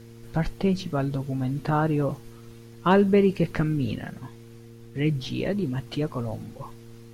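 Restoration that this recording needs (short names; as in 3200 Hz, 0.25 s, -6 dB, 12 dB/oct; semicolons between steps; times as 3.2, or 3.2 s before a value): clip repair -11 dBFS; de-hum 115.7 Hz, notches 4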